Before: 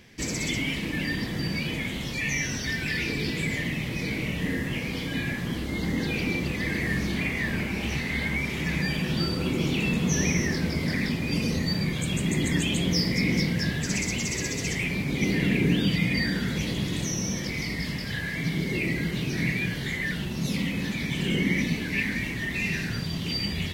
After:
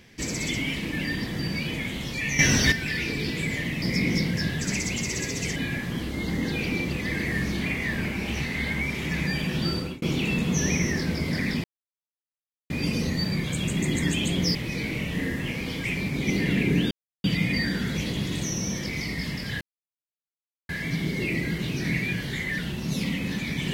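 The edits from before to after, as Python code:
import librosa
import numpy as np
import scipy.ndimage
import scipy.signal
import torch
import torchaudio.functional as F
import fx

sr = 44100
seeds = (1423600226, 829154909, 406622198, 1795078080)

y = fx.edit(x, sr, fx.clip_gain(start_s=2.39, length_s=0.33, db=10.0),
    fx.swap(start_s=3.82, length_s=1.29, other_s=13.04, other_length_s=1.74),
    fx.fade_out_span(start_s=9.32, length_s=0.25),
    fx.insert_silence(at_s=11.19, length_s=1.06),
    fx.insert_silence(at_s=15.85, length_s=0.33),
    fx.insert_silence(at_s=18.22, length_s=1.08), tone=tone)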